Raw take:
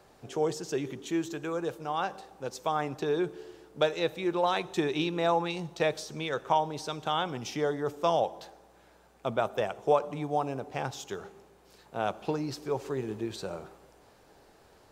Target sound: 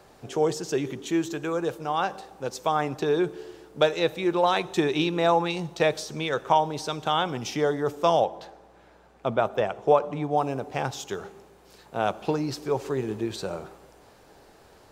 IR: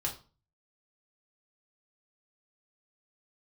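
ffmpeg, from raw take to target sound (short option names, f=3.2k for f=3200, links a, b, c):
-filter_complex "[0:a]asettb=1/sr,asplit=3[a][b][c];[a]atrim=end=8.244[d];[b]atrim=start=8.24:end=10.38,asetpts=PTS-STARTPTS,afade=t=in:d=0.004:c=qsin,afade=t=out:st=2.136:d=0.004:c=qsin,lowpass=f=3.2k:p=1[e];[c]atrim=start=10.376[f];[d][e]acrossfade=d=0.004:c1=hsin:c2=qsin[g];[g][f]acrossfade=d=0.004:c1=qsin:c2=hsin,volume=5dB"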